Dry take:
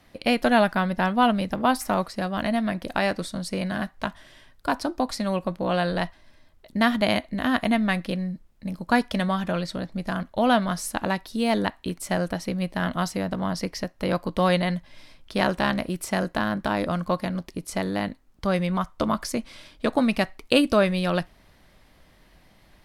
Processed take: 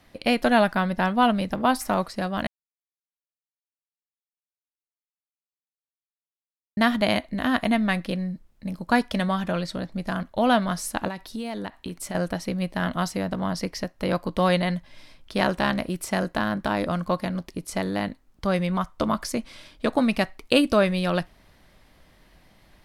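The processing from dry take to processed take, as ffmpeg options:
ffmpeg -i in.wav -filter_complex "[0:a]asettb=1/sr,asplit=3[link_01][link_02][link_03];[link_01]atrim=end=11.084[link_04];[link_02]atrim=start=11.08:end=12.15,asetpts=PTS-STARTPTS,afade=type=in:duration=0.004:curve=qsin,afade=type=out:start_time=1.066:duration=0.004:curve=qsin,acompressor=threshold=-28dB:ratio=6:attack=3.2:release=140:knee=1:detection=peak[link_05];[link_03]atrim=start=12.146[link_06];[link_04][link_05]acrossfade=duration=0.004:curve1=hsin:curve2=qsin[link_07];[link_07][link_06]acrossfade=duration=0.004:curve1=qsin:curve2=hsin,asplit=3[link_08][link_09][link_10];[link_08]atrim=end=2.47,asetpts=PTS-STARTPTS,afade=type=out:start_time=2.466:duration=0.004:curve=hsin[link_11];[link_09]atrim=start=2.47:end=6.77,asetpts=PTS-STARTPTS,volume=0[link_12];[link_10]atrim=start=6.77,asetpts=PTS-STARTPTS,afade=type=in:duration=0.004:curve=hsin[link_13];[link_11][link_12][link_13]concat=n=3:v=0:a=1" out.wav

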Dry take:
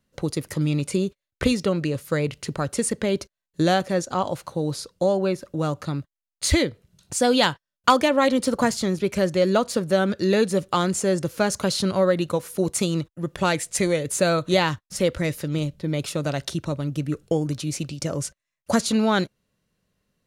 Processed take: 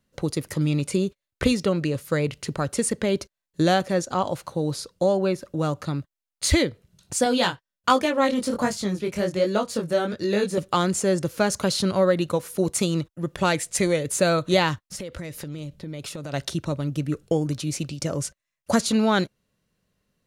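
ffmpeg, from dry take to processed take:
ffmpeg -i in.wav -filter_complex "[0:a]asettb=1/sr,asplit=3[link_01][link_02][link_03];[link_01]atrim=end=7.244[link_04];[link_02]atrim=start=7.24:end=10.58,asetpts=PTS-STARTPTS,afade=type=in:duration=0.004:curve=qsin,afade=type=out:start_time=3.336:duration=0.004:curve=qsin,flanger=delay=19:depth=5.1:speed=1.3[link_05];[link_03]atrim=start=10.576[link_06];[link_04][link_05]acrossfade=duration=0.004:curve1=hsin:curve2=qsin[link_07];[link_07][link_06]acrossfade=duration=0.004:curve1=qsin:curve2=hsin,asplit=3[link_08][link_09][link_10];[link_08]afade=type=out:start_time=14.86:duration=0.02[link_11];[link_09]acompressor=threshold=-30dB:ratio=16:attack=3.2:release=140:knee=1:detection=peak,afade=type=in:start_time=14.86:duration=0.02,afade=type=out:start_time=16.32:duration=0.02[link_12];[link_10]afade=type=in:start_time=16.32:duration=0.02[link_13];[link_11][link_12][link_13]amix=inputs=3:normalize=0" out.wav

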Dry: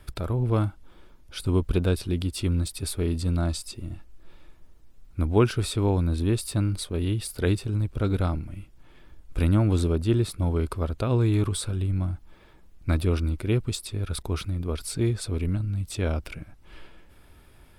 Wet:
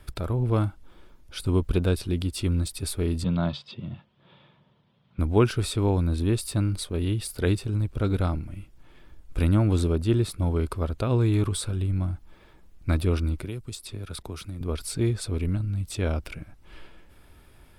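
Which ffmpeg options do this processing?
ffmpeg -i in.wav -filter_complex "[0:a]asettb=1/sr,asplit=3[link_01][link_02][link_03];[link_01]atrim=end=3.244[link_04];[link_02]atrim=start=3.24:end=5.19,asetpts=PTS-STARTPTS,afade=type=in:duration=0.004:curve=qsin,afade=type=out:start_time=1.946:duration=0.004:curve=qsin,highpass=frequency=110:width=0.5412,highpass=frequency=110:width=1.3066,equalizer=frequency=140:width_type=q:width=4:gain=10,equalizer=frequency=200:width_type=q:width=4:gain=7,equalizer=frequency=310:width_type=q:width=4:gain=-8,equalizer=frequency=560:width_type=q:width=4:gain=4,equalizer=frequency=980:width_type=q:width=4:gain=6,equalizer=frequency=3300:width_type=q:width=4:gain=10,lowpass=frequency=3900:width=0.5412,lowpass=frequency=3900:width=1.3066[link_05];[link_03]atrim=start=5.186[link_06];[link_04][link_05]acrossfade=duration=0.004:curve1=hsin:curve2=qsin[link_07];[link_07][link_06]acrossfade=duration=0.004:curve1=qsin:curve2=hsin,asettb=1/sr,asplit=3[link_08][link_09][link_10];[link_08]atrim=end=13.444[link_11];[link_09]atrim=start=13.44:end=14.61,asetpts=PTS-STARTPTS,afade=type=in:duration=0.004:curve=qsin,afade=type=out:start_time=1.166:duration=0.004:curve=qsin,acrossover=split=120|5100[link_12][link_13][link_14];[link_12]acompressor=threshold=-41dB:ratio=4[link_15];[link_13]acompressor=threshold=-36dB:ratio=4[link_16];[link_14]acompressor=threshold=-41dB:ratio=4[link_17];[link_15][link_16][link_17]amix=inputs=3:normalize=0[link_18];[link_10]atrim=start=14.606[link_19];[link_11][link_18]acrossfade=duration=0.004:curve1=hsin:curve2=qsin[link_20];[link_20][link_19]acrossfade=duration=0.004:curve1=qsin:curve2=hsin" out.wav

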